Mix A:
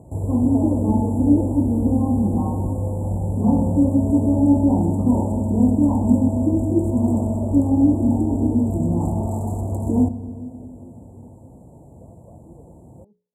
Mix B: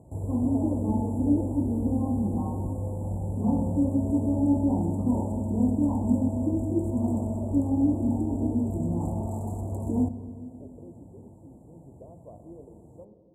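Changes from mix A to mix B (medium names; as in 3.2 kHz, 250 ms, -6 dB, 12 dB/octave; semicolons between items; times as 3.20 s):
speech: send on; background -7.5 dB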